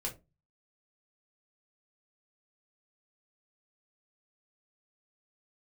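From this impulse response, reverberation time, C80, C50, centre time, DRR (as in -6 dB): 0.25 s, 21.0 dB, 14.0 dB, 15 ms, -2.5 dB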